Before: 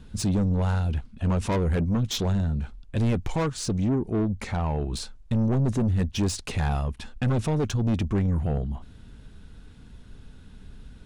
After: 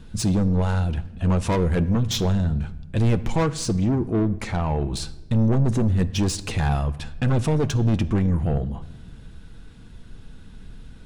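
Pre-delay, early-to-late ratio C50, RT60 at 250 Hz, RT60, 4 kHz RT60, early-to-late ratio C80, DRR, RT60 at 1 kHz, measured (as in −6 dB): 6 ms, 17.0 dB, 1.5 s, 1.0 s, 0.75 s, 18.5 dB, 10.0 dB, 0.90 s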